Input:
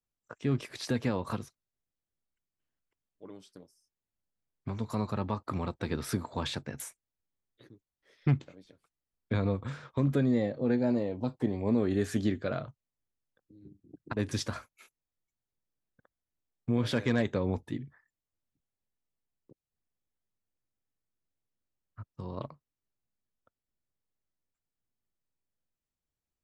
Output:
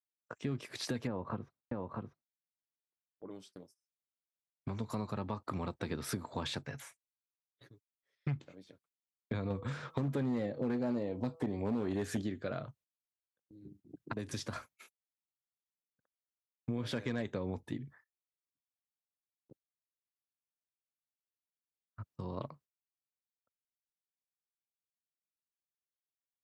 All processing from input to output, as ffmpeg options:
-filter_complex "[0:a]asettb=1/sr,asplit=3[a][b][c];[a]atrim=end=1.074[d];[b]atrim=start=1.07:end=3.31,asetpts=PTS-STARTPTS,afade=t=in:d=0.004:c=qsin,afade=t=out:st=2.236:d=0.004:c=qsin,lowpass=1.4k,aecho=1:1:642:0.562,atrim=end_sample=98784[e];[c]atrim=start=3.306[f];[d][e]acrossfade=d=0.004:c1=hsin:c2=qsin[g];[g][f]acrossfade=d=0.004:c1=qsin:c2=hsin,asettb=1/sr,asplit=3[h][i][j];[h]atrim=end=6.654[k];[i]atrim=start=6.65:end=8.36,asetpts=PTS-STARTPTS,afade=t=in:d=0.004:c=qsin,afade=t=out:st=1.706:d=0.004:c=qsin,acrossover=split=4100[l][m];[m]acompressor=threshold=-54dB:ratio=4:attack=1:release=60[n];[l][n]amix=inputs=2:normalize=0,equalizer=f=290:t=o:w=1.5:g=-8.5,aecho=1:1:7.2:0.42,atrim=end_sample=75411[o];[j]atrim=start=8.356[p];[k][o]acrossfade=d=0.004:c1=hsin:c2=qsin[q];[q][p]acrossfade=d=0.004:c1=qsin:c2=hsin,asettb=1/sr,asplit=3[r][s][t];[r]atrim=end=9.504[u];[s]atrim=start=9.5:end=12.22,asetpts=PTS-STARTPTS,afade=t=in:d=0.004:c=qsin,afade=t=out:st=2.716:d=0.004:c=qsin,acontrast=34,bandreject=f=163.5:t=h:w=4,bandreject=f=327:t=h:w=4,bandreject=f=490.5:t=h:w=4,bandreject=f=654:t=h:w=4,bandreject=f=817.5:t=h:w=4,bandreject=f=981:t=h:w=4,bandreject=f=1.1445k:t=h:w=4,bandreject=f=1.308k:t=h:w=4,asoftclip=type=hard:threshold=-17.5dB[v];[t]atrim=start=12.216[w];[u][v]acrossfade=d=0.004:c1=hsin:c2=qsin[x];[x][w]acrossfade=d=0.004:c1=qsin:c2=hsin,asettb=1/sr,asplit=3[y][z][aa];[y]atrim=end=14.124[ab];[z]atrim=start=14.12:end=14.53,asetpts=PTS-STARTPTS,afade=t=in:d=0.004:c=qsin,afade=t=out:st=0.406:d=0.004:c=qsin,highpass=42,acrossover=split=520|4700[ac][ad][ae];[ac]acompressor=threshold=-34dB:ratio=4[af];[ad]acompressor=threshold=-45dB:ratio=4[ag];[ae]acompressor=threshold=-45dB:ratio=4[ah];[af][ag][ah]amix=inputs=3:normalize=0[ai];[aa]atrim=start=14.526[aj];[ab][ai]acrossfade=d=0.004:c1=hsin:c2=qsin[ak];[ak][aj]acrossfade=d=0.004:c1=qsin:c2=hsin,highpass=76,agate=range=-19dB:threshold=-60dB:ratio=16:detection=peak,acompressor=threshold=-35dB:ratio=3"

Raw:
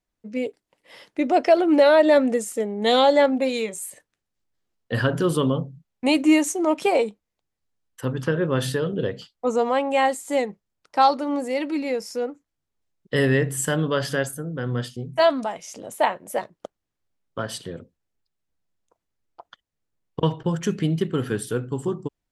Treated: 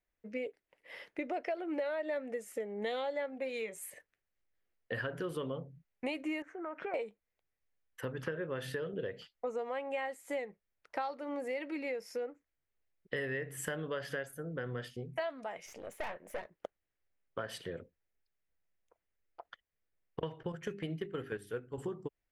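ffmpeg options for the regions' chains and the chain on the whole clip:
-filter_complex "[0:a]asettb=1/sr,asplit=3[a][b][c];[a]atrim=end=6.424[d];[b]atrim=start=6.42:end=6.94,asetpts=PTS-STARTPTS,afade=t=in:d=0.004:c=qsin,afade=t=out:st=0.516:d=0.004:c=qsin,lowpass=f=1.5k:t=q:w=6.6,acompressor=threshold=-31dB:ratio=5:attack=3.2:release=140:knee=1:detection=peak[e];[c]atrim=start=6.936[f];[d][e]acrossfade=d=0.004:c1=hsin:c2=qsin[g];[g][f]acrossfade=d=0.004:c1=qsin:c2=hsin,asettb=1/sr,asplit=3[h][i][j];[h]atrim=end=15.664[k];[i]atrim=start=15.66:end=16.51,asetpts=PTS-STARTPTS,afade=t=in:d=0.004:c=qsin,afade=t=out:st=0.846:d=0.004:c=qsin,acrossover=split=9300[l][m];[m]acompressor=threshold=-51dB:ratio=4:attack=1:release=60[n];[l][n]amix=inputs=2:normalize=0,aeval=exprs='(tanh(25.1*val(0)+0.6)-tanh(0.6))/25.1':c=same[o];[j]atrim=start=16.506[p];[k][o]acrossfade=d=0.004:c1=hsin:c2=qsin[q];[q][p]acrossfade=d=0.004:c1=qsin:c2=hsin,asettb=1/sr,asplit=3[r][s][t];[r]atrim=end=20.524[u];[s]atrim=start=20.52:end=21.78,asetpts=PTS-STARTPTS,afade=t=in:d=0.004:c=qsin,afade=t=out:st=1.256:d=0.004:c=qsin,agate=range=-8dB:threshold=-25dB:ratio=16:release=100:detection=peak,bandreject=f=50:t=h:w=6,bandreject=f=100:t=h:w=6,bandreject=f=150:t=h:w=6,bandreject=f=200:t=h:w=6,bandreject=f=250:t=h:w=6,bandreject=f=300:t=h:w=6,bandreject=f=350:t=h:w=6,bandreject=f=400:t=h:w=6[v];[t]atrim=start=21.776[w];[u][v]acrossfade=d=0.004:c1=hsin:c2=qsin[x];[x][w]acrossfade=d=0.004:c1=qsin:c2=hsin,equalizer=f=125:t=o:w=1:g=-5,equalizer=f=250:t=o:w=1:g=-6,equalizer=f=500:t=o:w=1:g=3,equalizer=f=1k:t=o:w=1:g=-4,equalizer=f=2k:t=o:w=1:g=7,equalizer=f=4k:t=o:w=1:g=-5,equalizer=f=8k:t=o:w=1:g=-9,acompressor=threshold=-31dB:ratio=5,volume=-4.5dB"

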